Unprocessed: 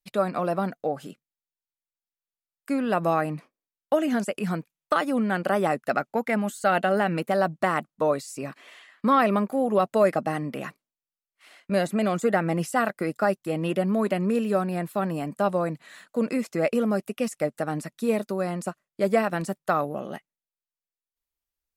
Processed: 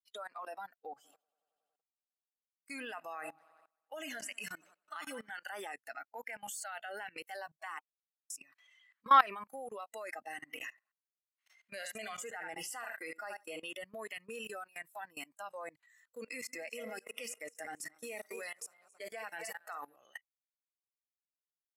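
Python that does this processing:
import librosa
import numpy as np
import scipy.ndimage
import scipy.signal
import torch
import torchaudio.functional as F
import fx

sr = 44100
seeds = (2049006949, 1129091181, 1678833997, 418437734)

y = fx.echo_heads(x, sr, ms=93, heads='first and second', feedback_pct=55, wet_db=-17, at=(0.97, 5.29), fade=0.02)
y = fx.echo_feedback(y, sr, ms=74, feedback_pct=25, wet_db=-9.0, at=(10.32, 13.62))
y = fx.reverse_delay_fb(y, sr, ms=137, feedback_pct=67, wet_db=-10.0, at=(16.31, 19.96))
y = fx.edit(y, sr, fx.silence(start_s=7.79, length_s=0.51), tone=tone)
y = fx.noise_reduce_blind(y, sr, reduce_db=17)
y = scipy.signal.sosfilt(scipy.signal.butter(2, 960.0, 'highpass', fs=sr, output='sos'), y)
y = fx.level_steps(y, sr, step_db=23)
y = F.gain(torch.from_numpy(y), 3.0).numpy()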